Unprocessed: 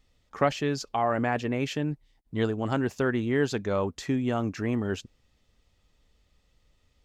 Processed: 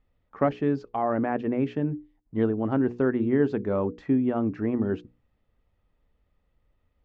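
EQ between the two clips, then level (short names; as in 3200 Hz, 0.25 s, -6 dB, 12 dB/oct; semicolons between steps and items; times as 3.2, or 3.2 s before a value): LPF 1700 Hz 12 dB/oct; notches 60/120/180/240/300/360/420/480 Hz; dynamic EQ 280 Hz, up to +8 dB, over -40 dBFS, Q 0.79; -2.5 dB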